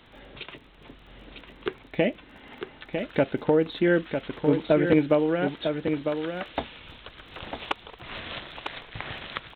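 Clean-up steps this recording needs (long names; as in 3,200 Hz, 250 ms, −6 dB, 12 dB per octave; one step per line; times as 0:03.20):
click removal
echo removal 951 ms −6.5 dB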